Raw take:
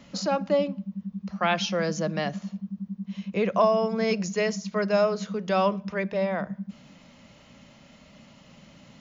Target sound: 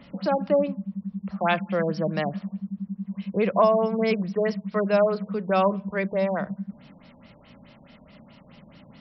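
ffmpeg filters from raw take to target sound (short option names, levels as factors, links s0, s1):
-af "afftfilt=real='re*lt(b*sr/1024,970*pow(5900/970,0.5+0.5*sin(2*PI*4.7*pts/sr)))':imag='im*lt(b*sr/1024,970*pow(5900/970,0.5+0.5*sin(2*PI*4.7*pts/sr)))':win_size=1024:overlap=0.75,volume=1.26"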